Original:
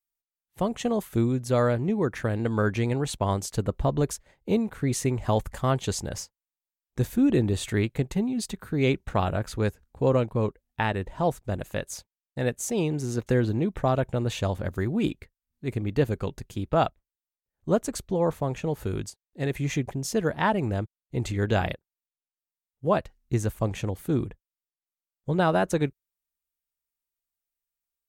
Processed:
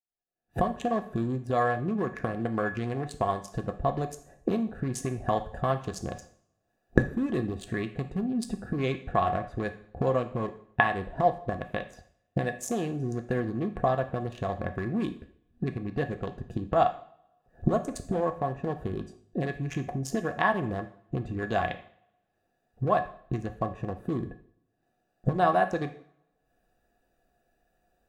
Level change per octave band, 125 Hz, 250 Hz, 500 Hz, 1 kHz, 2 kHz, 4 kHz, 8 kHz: −5.5, −4.0, −3.0, +2.0, +0.5, −7.5, −9.0 decibels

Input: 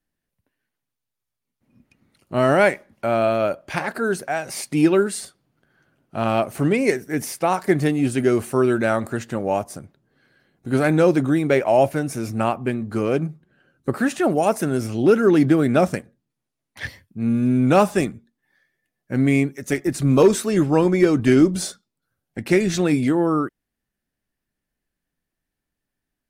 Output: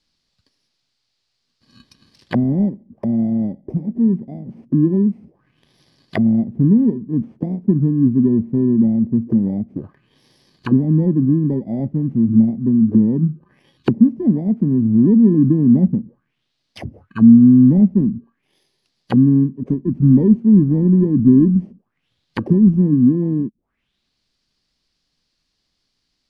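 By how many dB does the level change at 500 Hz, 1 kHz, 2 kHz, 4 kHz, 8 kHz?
−8.0 dB, below −10 dB, below −10 dB, below −10 dB, below −30 dB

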